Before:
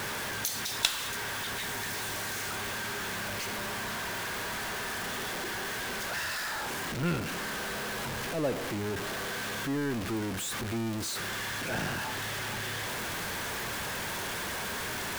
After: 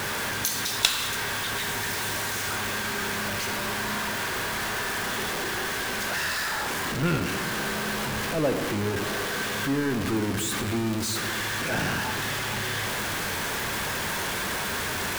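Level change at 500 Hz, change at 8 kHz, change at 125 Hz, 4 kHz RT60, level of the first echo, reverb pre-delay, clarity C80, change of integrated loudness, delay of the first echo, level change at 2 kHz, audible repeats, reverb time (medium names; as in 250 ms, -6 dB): +5.5 dB, +5.5 dB, +6.0 dB, 1.5 s, no echo, 15 ms, 9.0 dB, +6.0 dB, no echo, +6.0 dB, no echo, 2.3 s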